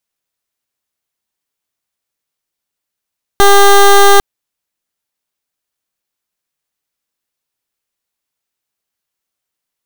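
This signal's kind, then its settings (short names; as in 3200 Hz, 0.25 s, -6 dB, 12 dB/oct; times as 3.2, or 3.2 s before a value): pulse 400 Hz, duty 16% -4.5 dBFS 0.80 s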